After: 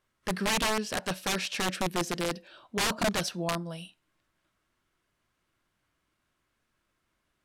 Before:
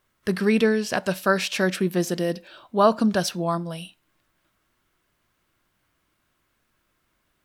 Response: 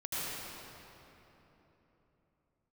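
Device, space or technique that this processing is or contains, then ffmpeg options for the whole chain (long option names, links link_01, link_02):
overflowing digital effects unit: -af "aeval=exprs='(mod(5.96*val(0)+1,2)-1)/5.96':channel_layout=same,lowpass=11000,volume=-6dB"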